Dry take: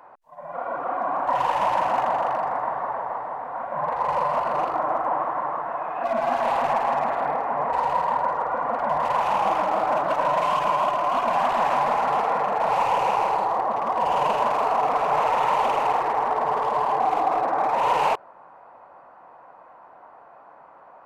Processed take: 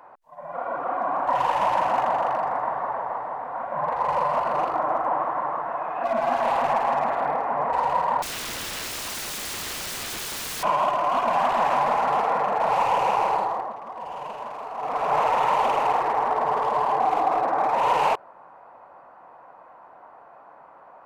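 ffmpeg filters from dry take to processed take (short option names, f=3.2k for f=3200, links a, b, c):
-filter_complex "[0:a]asettb=1/sr,asplit=3[a][b][c];[a]atrim=end=8.224[d];[b]atrim=start=8.22:end=10.63,asetpts=PTS-STARTPTS,afade=t=in:d=0.004:c=qsin,afade=t=out:st=2.406:d=0.004:c=qsin,aeval=exprs='(mod(23.7*val(0)+1,2)-1)/23.7':c=same[e];[c]atrim=start=10.626[f];[d][e]acrossfade=d=0.004:c1=hsin:c2=qsin[g];[g][f]acrossfade=d=0.004:c1=qsin:c2=hsin,asplit=3[h][i][j];[h]atrim=end=13.77,asetpts=PTS-STARTPTS,afade=t=out:st=13.36:d=0.41:silence=0.237137[k];[i]atrim=start=13.77:end=14.74,asetpts=PTS-STARTPTS,volume=-12.5dB[l];[j]atrim=start=14.74,asetpts=PTS-STARTPTS,afade=t=in:d=0.41:silence=0.237137[m];[k][l][m]concat=n=3:v=0:a=1"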